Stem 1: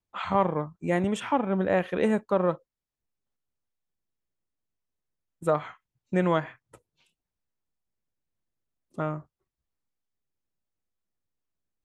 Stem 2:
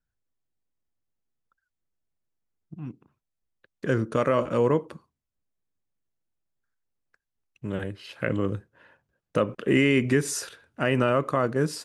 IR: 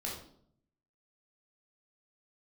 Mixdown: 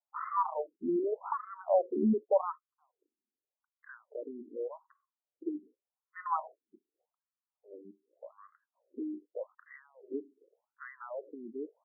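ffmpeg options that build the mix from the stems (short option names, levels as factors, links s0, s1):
-filter_complex "[0:a]equalizer=f=1900:w=1.5:g=-9,bandreject=f=1600:w=7.2,volume=1.12[s0];[1:a]highshelf=f=2400:g=-10,volume=0.224[s1];[s0][s1]amix=inputs=2:normalize=0,afftfilt=real='re*between(b*sr/1024,280*pow(1500/280,0.5+0.5*sin(2*PI*0.85*pts/sr))/1.41,280*pow(1500/280,0.5+0.5*sin(2*PI*0.85*pts/sr))*1.41)':imag='im*between(b*sr/1024,280*pow(1500/280,0.5+0.5*sin(2*PI*0.85*pts/sr))/1.41,280*pow(1500/280,0.5+0.5*sin(2*PI*0.85*pts/sr))*1.41)':win_size=1024:overlap=0.75"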